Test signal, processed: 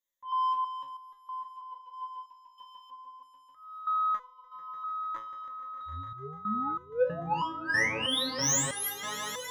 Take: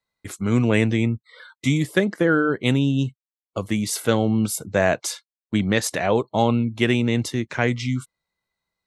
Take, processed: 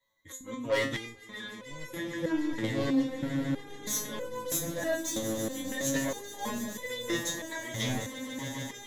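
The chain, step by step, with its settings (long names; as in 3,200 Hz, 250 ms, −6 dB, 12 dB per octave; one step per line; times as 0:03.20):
EQ curve with evenly spaced ripples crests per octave 1.1, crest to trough 16 dB
transient designer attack +1 dB, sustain −6 dB
in parallel at −2.5 dB: downward compressor, threshold −27 dBFS
on the sum: volume swells 231 ms
soft clipping −20.5 dBFS
echo that builds up and dies away 148 ms, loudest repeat 8, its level −15.5 dB
step-sequenced resonator 3.1 Hz 110–500 Hz
level +7 dB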